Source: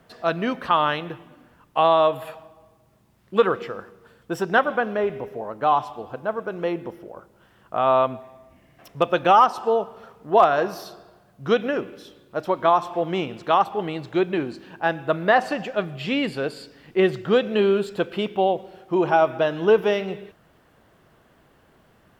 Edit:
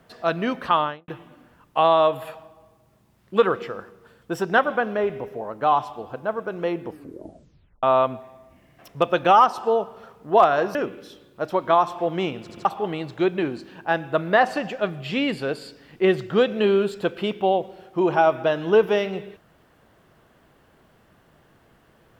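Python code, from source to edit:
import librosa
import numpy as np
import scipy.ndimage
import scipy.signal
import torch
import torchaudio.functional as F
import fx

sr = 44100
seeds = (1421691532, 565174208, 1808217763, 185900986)

y = fx.studio_fade_out(x, sr, start_s=0.73, length_s=0.35)
y = fx.edit(y, sr, fx.tape_stop(start_s=6.85, length_s=0.98),
    fx.cut(start_s=10.75, length_s=0.95),
    fx.stutter_over(start_s=13.36, slice_s=0.08, count=3), tone=tone)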